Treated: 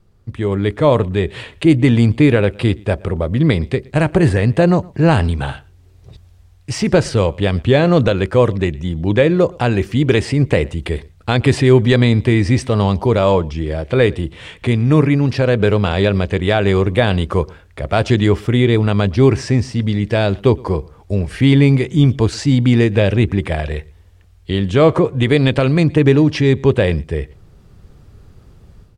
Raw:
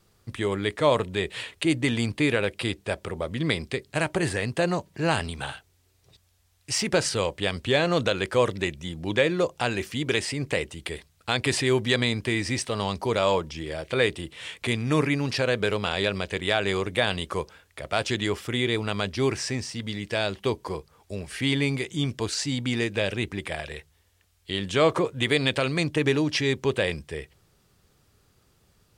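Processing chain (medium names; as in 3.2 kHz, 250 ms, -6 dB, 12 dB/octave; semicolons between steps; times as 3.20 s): tilt EQ -3 dB/octave; level rider; echo from a far wall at 20 m, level -25 dB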